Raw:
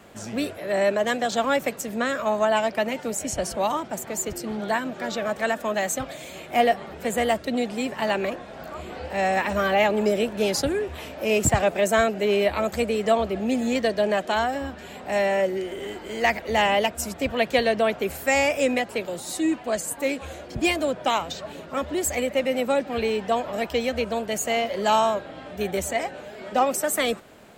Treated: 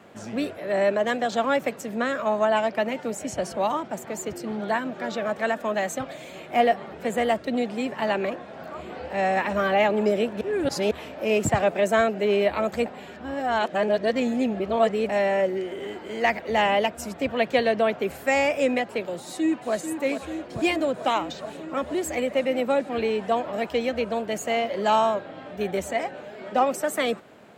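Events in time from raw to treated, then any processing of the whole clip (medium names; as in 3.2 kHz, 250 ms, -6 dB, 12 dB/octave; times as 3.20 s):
10.41–10.91 s: reverse
12.86–15.09 s: reverse
19.17–19.73 s: echo throw 440 ms, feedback 80%, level -8.5 dB
whole clip: high-pass 110 Hz 12 dB/octave; treble shelf 4.7 kHz -10.5 dB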